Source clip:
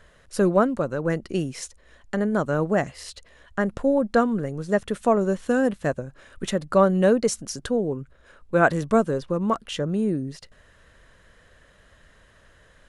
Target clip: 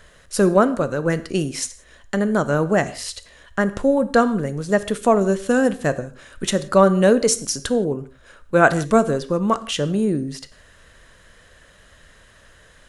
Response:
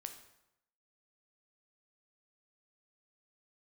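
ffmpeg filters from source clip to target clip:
-filter_complex "[0:a]highshelf=f=3000:g=7,asplit=2[s0][s1];[1:a]atrim=start_sample=2205,afade=t=out:st=0.23:d=0.01,atrim=end_sample=10584[s2];[s1][s2]afir=irnorm=-1:irlink=0,volume=1.5[s3];[s0][s3]amix=inputs=2:normalize=0,volume=0.794"

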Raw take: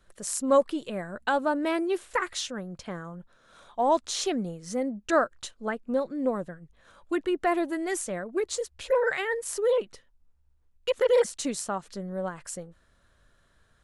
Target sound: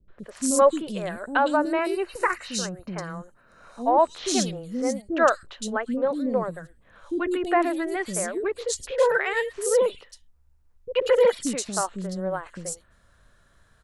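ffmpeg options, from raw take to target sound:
-filter_complex "[0:a]asettb=1/sr,asplit=3[s0][s1][s2];[s0]atrim=end=1.324[s3];[s1]atrim=start=1.32:end=4.02,asetpts=PTS-STARTPTS,afade=t=in:d=0.004:c=qsin,afade=t=out:st=2.696:d=0.004:c=qsin,asuperstop=centerf=3400:order=4:qfactor=5.8[s4];[s2]atrim=start=4.016[s5];[s3][s4]acrossfade=d=0.004:c1=hsin:c2=qsin[s6];[s6][s5]acrossfade=d=0.004:c1=qsin:c2=hsin,acrossover=split=370|3200[s7][s8][s9];[s8]adelay=80[s10];[s9]adelay=190[s11];[s7][s10][s11]amix=inputs=3:normalize=0,volume=1.78"

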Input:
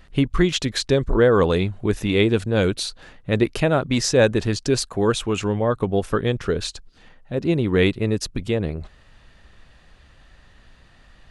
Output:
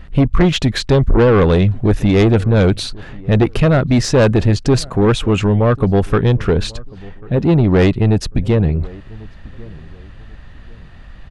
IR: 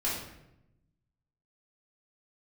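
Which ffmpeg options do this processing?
-filter_complex "[0:a]bass=f=250:g=7,treble=f=4000:g=-9,asoftclip=type=tanh:threshold=0.188,asplit=2[s0][s1];[s1]adelay=1093,lowpass=f=980:p=1,volume=0.0794,asplit=2[s2][s3];[s3]adelay=1093,lowpass=f=980:p=1,volume=0.32[s4];[s0][s2][s4]amix=inputs=3:normalize=0,volume=2.51"

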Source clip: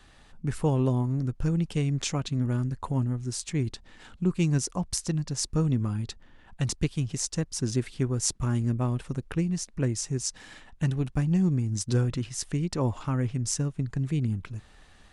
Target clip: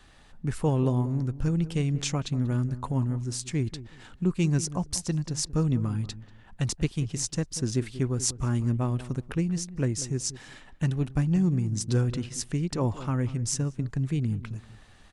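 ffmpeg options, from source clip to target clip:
-filter_complex "[0:a]asplit=2[s0][s1];[s1]adelay=188,lowpass=f=950:p=1,volume=0.2,asplit=2[s2][s3];[s3]adelay=188,lowpass=f=950:p=1,volume=0.23,asplit=2[s4][s5];[s5]adelay=188,lowpass=f=950:p=1,volume=0.23[s6];[s0][s2][s4][s6]amix=inputs=4:normalize=0"

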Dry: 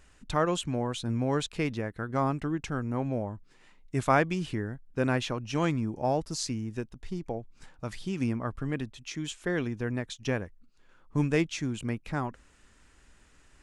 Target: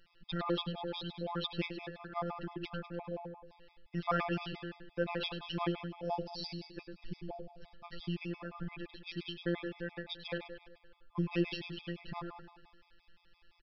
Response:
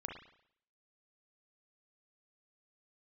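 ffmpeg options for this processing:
-af "aexciter=amount=2.1:drive=4.8:freq=2700,afftfilt=real='hypot(re,im)*cos(PI*b)':imag='0':win_size=1024:overlap=0.75,aecho=1:1:101|202|303|404|505|606:0.398|0.211|0.112|0.0593|0.0314|0.0166,aresample=11025,aresample=44100,afftfilt=real='re*gt(sin(2*PI*5.8*pts/sr)*(1-2*mod(floor(b*sr/1024/650),2)),0)':imag='im*gt(sin(2*PI*5.8*pts/sr)*(1-2*mod(floor(b*sr/1024/650),2)),0)':win_size=1024:overlap=0.75,volume=0.794"

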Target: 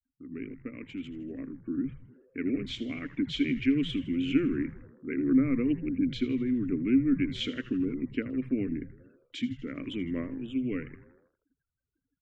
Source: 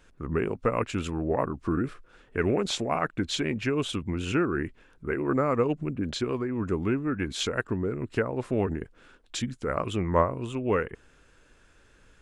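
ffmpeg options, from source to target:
-filter_complex "[0:a]afftfilt=real='re*gte(hypot(re,im),0.00447)':imag='im*gte(hypot(re,im),0.00447)':win_size=1024:overlap=0.75,dynaudnorm=f=1000:g=5:m=3.16,asplit=3[s0][s1][s2];[s0]bandpass=f=270:t=q:w=8,volume=1[s3];[s1]bandpass=f=2290:t=q:w=8,volume=0.501[s4];[s2]bandpass=f=3010:t=q:w=8,volume=0.355[s5];[s3][s4][s5]amix=inputs=3:normalize=0,asplit=2[s6][s7];[s7]asplit=6[s8][s9][s10][s11][s12][s13];[s8]adelay=80,afreqshift=-130,volume=0.188[s14];[s9]adelay=160,afreqshift=-260,volume=0.111[s15];[s10]adelay=240,afreqshift=-390,volume=0.0653[s16];[s11]adelay=320,afreqshift=-520,volume=0.0389[s17];[s12]adelay=400,afreqshift=-650,volume=0.0229[s18];[s13]adelay=480,afreqshift=-780,volume=0.0135[s19];[s14][s15][s16][s17][s18][s19]amix=inputs=6:normalize=0[s20];[s6][s20]amix=inputs=2:normalize=0"

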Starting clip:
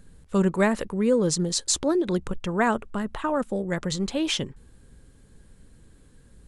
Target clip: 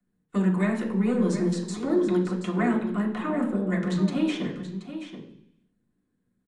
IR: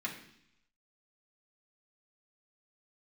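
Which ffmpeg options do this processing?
-filter_complex "[0:a]agate=range=0.0794:threshold=0.00794:ratio=16:detection=peak,acrossover=split=180|580|1800[s0][s1][s2][s3];[s0]acompressor=threshold=0.00708:ratio=4[s4];[s1]acompressor=threshold=0.0398:ratio=4[s5];[s2]acompressor=threshold=0.0141:ratio=4[s6];[s3]acompressor=threshold=0.02:ratio=4[s7];[s4][s5][s6][s7]amix=inputs=4:normalize=0,acrossover=split=110|1200|1900[s8][s9][s10][s11];[s9]aeval=exprs='0.15*sin(PI/2*1.58*val(0)/0.15)':c=same[s12];[s8][s12][s10][s11]amix=inputs=4:normalize=0,aecho=1:1:728:0.282[s13];[1:a]atrim=start_sample=2205[s14];[s13][s14]afir=irnorm=-1:irlink=0,volume=0.562"

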